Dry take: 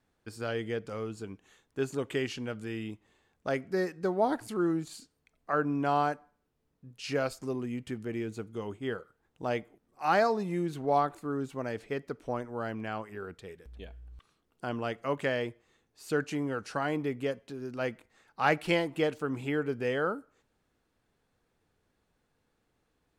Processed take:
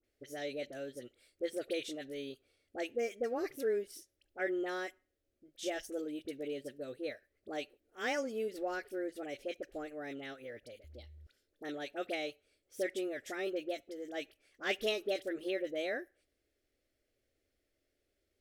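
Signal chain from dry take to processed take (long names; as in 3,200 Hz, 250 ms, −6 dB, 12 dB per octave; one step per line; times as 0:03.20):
phaser with its sweep stopped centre 320 Hz, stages 4
speed change +26%
all-pass dispersion highs, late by 41 ms, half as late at 1,400 Hz
level −3.5 dB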